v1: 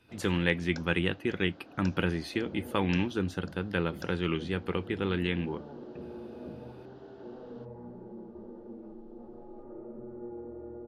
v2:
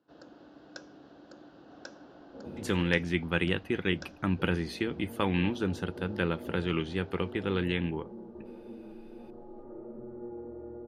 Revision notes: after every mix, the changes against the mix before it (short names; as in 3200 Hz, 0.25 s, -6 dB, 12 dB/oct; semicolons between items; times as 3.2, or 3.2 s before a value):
speech: entry +2.45 s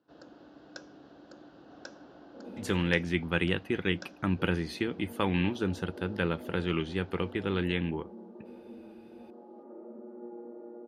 second sound: add rippled Chebyshev high-pass 180 Hz, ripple 3 dB